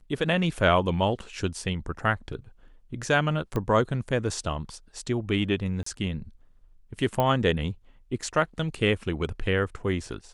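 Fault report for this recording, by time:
3.56 pop -17 dBFS
5.83–5.86 gap 34 ms
7.2 pop -12 dBFS

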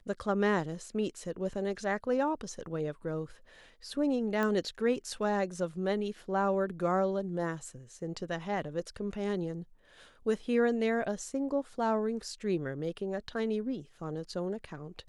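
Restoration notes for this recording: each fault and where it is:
4.43 pop -19 dBFS

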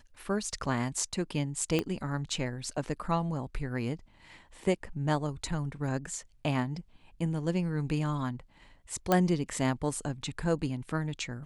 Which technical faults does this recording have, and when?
1.79 pop -15 dBFS
9.12 pop -11 dBFS

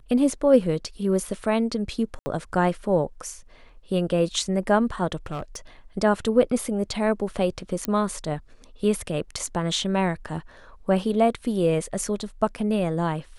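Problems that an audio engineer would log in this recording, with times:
2.19–2.26 gap 70 ms
5.26–5.57 clipped -26 dBFS
7.85 pop -11 dBFS

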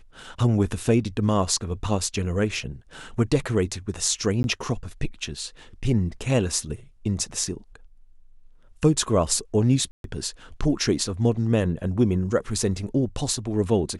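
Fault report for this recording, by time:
4.43–4.44 gap 11 ms
9.91–10.04 gap 0.132 s

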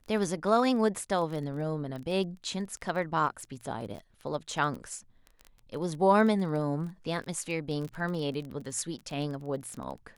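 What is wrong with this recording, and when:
crackle 20/s -35 dBFS

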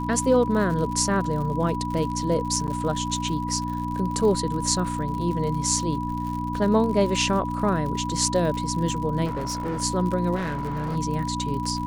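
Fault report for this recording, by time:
crackle 73/s -31 dBFS
hum 60 Hz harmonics 5 -30 dBFS
tone 980 Hz -30 dBFS
2.67–2.68 gap 8.4 ms
9.25–9.82 clipped -24.5 dBFS
10.35–10.97 clipped -24.5 dBFS

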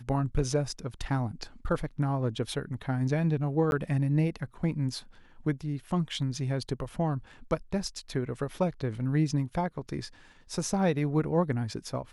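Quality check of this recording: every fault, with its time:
3.71–3.72 gap 11 ms

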